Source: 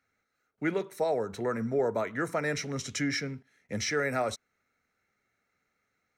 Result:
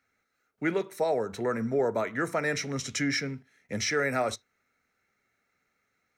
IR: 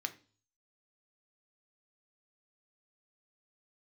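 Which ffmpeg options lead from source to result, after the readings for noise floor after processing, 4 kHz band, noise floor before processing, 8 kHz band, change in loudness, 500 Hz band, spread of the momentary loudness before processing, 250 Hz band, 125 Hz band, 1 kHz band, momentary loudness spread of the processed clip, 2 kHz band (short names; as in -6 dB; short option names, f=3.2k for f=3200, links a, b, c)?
-77 dBFS, +2.5 dB, -80 dBFS, +2.5 dB, +2.0 dB, +1.5 dB, 6 LU, +1.5 dB, +0.5 dB, +2.0 dB, 6 LU, +2.5 dB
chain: -filter_complex "[0:a]asplit=2[a][b];[1:a]atrim=start_sample=2205,atrim=end_sample=3528[c];[b][c]afir=irnorm=-1:irlink=0,volume=-9.5dB[d];[a][d]amix=inputs=2:normalize=0"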